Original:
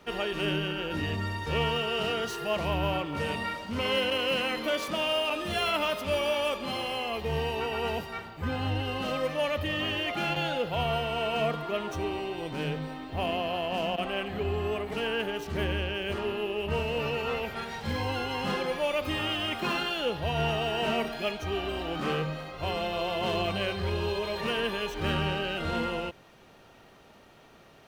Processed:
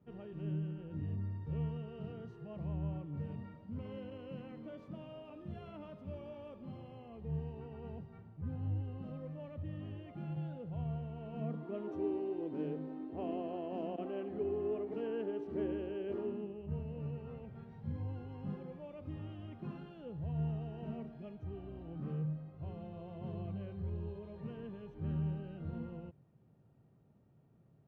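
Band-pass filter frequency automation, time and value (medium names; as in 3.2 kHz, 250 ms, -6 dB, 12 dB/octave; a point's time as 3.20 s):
band-pass filter, Q 2.4
11.19 s 130 Hz
11.89 s 320 Hz
16.19 s 320 Hz
16.62 s 130 Hz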